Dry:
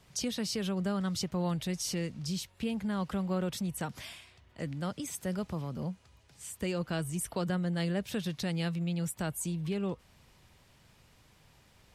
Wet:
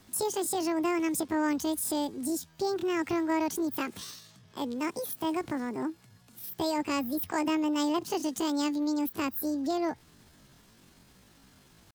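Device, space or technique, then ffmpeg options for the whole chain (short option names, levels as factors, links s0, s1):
chipmunk voice: -af "asetrate=76340,aresample=44100,atempo=0.577676,volume=1.5"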